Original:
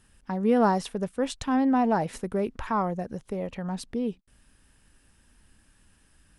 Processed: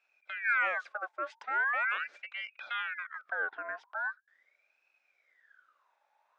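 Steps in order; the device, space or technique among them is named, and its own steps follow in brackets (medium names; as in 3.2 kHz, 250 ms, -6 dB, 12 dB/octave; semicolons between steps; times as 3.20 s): 3.19–3.86 s: graphic EQ 125/250/500/1000/8000 Hz +12/-10/+7/+8/-11 dB; voice changer toy (ring modulator with a swept carrier 1.7 kHz, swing 50%, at 0.41 Hz; cabinet simulation 570–4700 Hz, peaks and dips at 580 Hz +6 dB, 980 Hz -5 dB, 1.5 kHz +10 dB, 2.9 kHz -6 dB, 4.3 kHz -9 dB); trim -8.5 dB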